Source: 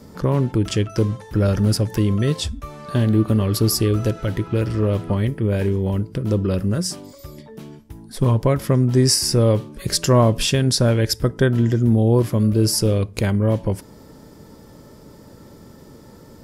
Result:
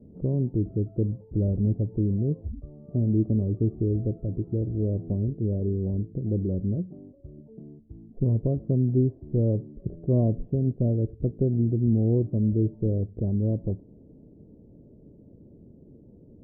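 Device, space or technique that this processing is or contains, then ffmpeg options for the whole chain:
under water: -af "lowpass=f=410:w=0.5412,lowpass=f=410:w=1.3066,equalizer=f=690:t=o:w=0.43:g=10,volume=0.501"

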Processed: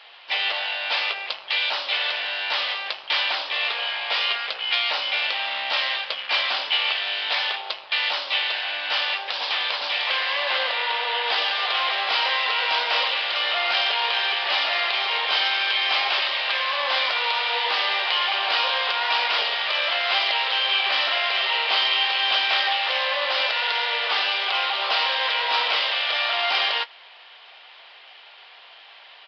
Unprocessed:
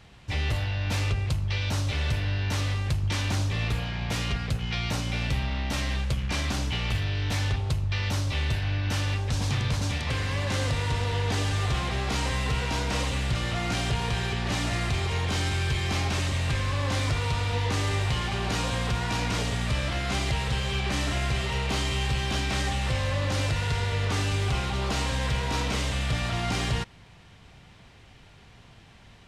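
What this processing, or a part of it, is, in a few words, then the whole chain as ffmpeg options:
musical greeting card: -filter_complex "[0:a]aresample=11025,aresample=44100,highpass=f=610:w=0.5412,highpass=f=610:w=1.3066,equalizer=f=3100:t=o:w=0.59:g=6,asettb=1/sr,asplit=3[s0][s1][s2];[s0]atrim=end=10.504[s3];[s1]atrim=start=10.5:end=11.24,asetpts=PTS-STARTPTS,afade=t=in:d=0.004:c=qsin,afade=t=out:st=0.736:d=0.004:c=qsin,lowpass=4300[s4];[s2]atrim=start=11.236[s5];[s3][s4]acrossfade=d=0.004:c1=hsin:c2=qsin[s6];[s6][s5]acrossfade=d=0.004:c1=qsin:c2=hsin,asplit=2[s7][s8];[s8]adelay=19,volume=0.2[s9];[s7][s9]amix=inputs=2:normalize=0,volume=2.51"

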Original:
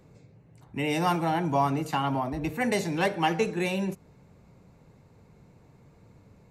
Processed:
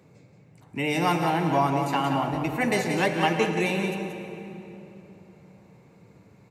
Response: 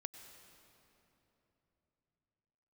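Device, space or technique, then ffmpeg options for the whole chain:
PA in a hall: -filter_complex "[0:a]highpass=110,equalizer=f=2300:t=o:w=0.4:g=4,aecho=1:1:179:0.447[s0];[1:a]atrim=start_sample=2205[s1];[s0][s1]afir=irnorm=-1:irlink=0,volume=1.88"

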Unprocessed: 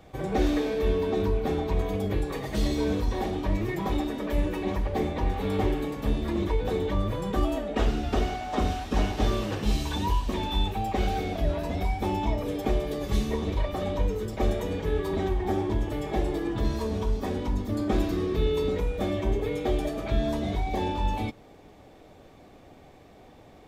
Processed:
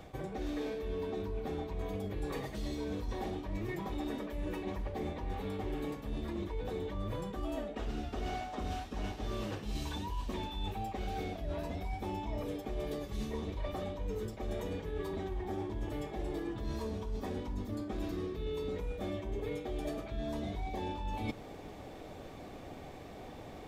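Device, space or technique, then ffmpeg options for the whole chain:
compression on the reversed sound: -af "areverse,acompressor=threshold=0.0126:ratio=16,areverse,volume=1.58"

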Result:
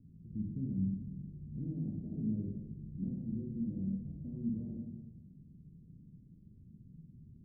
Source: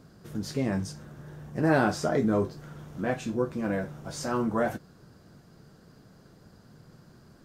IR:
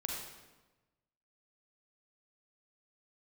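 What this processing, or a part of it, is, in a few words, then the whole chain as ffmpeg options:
club heard from the street: -filter_complex "[0:a]alimiter=limit=0.0708:level=0:latency=1:release=56,lowpass=f=240:w=0.5412,lowpass=f=240:w=1.3066[s0];[1:a]atrim=start_sample=2205[s1];[s0][s1]afir=irnorm=-1:irlink=0,volume=0.75"

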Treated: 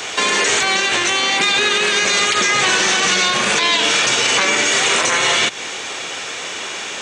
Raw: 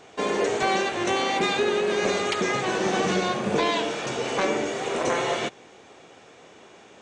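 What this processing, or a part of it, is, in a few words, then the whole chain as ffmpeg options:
mastering chain: -filter_complex "[0:a]equalizer=f=730:t=o:w=0.34:g=-3,acrossover=split=270|880[s0][s1][s2];[s0]acompressor=threshold=0.01:ratio=4[s3];[s1]acompressor=threshold=0.0112:ratio=4[s4];[s2]acompressor=threshold=0.0158:ratio=4[s5];[s3][s4][s5]amix=inputs=3:normalize=0,acompressor=threshold=0.02:ratio=2,tiltshelf=f=970:g=-9.5,alimiter=level_in=20:limit=0.891:release=50:level=0:latency=1,volume=0.562"

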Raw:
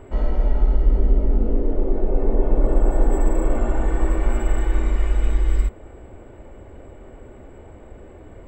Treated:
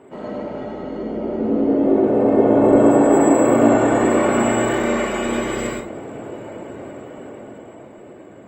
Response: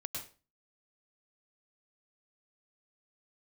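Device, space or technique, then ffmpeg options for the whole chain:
far-field microphone of a smart speaker: -filter_complex "[0:a]lowshelf=f=67:g=5[s0];[1:a]atrim=start_sample=2205[s1];[s0][s1]afir=irnorm=-1:irlink=0,highpass=f=160:w=0.5412,highpass=f=160:w=1.3066,dynaudnorm=f=260:g=13:m=3.16,volume=1.5" -ar 48000 -c:a libopus -b:a 24k

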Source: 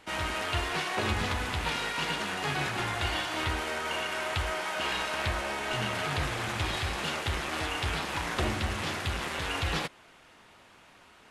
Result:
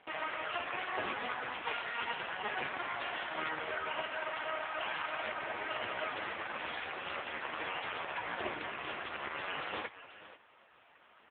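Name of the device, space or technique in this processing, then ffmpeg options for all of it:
satellite phone: -af "highpass=350,lowpass=3400,aecho=1:1:483:0.178" -ar 8000 -c:a libopencore_amrnb -b:a 4750

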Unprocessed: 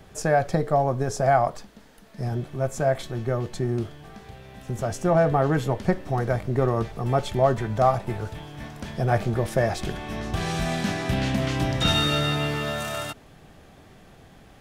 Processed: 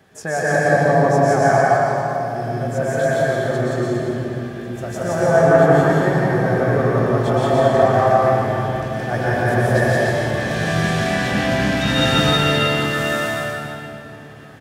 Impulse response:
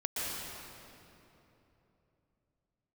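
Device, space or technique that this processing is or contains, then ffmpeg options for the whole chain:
stadium PA: -filter_complex "[0:a]highpass=120,equalizer=f=1700:t=o:w=0.26:g=8,aecho=1:1:172|277:1|0.316[s0];[1:a]atrim=start_sample=2205[s1];[s0][s1]afir=irnorm=-1:irlink=0,volume=0.794"

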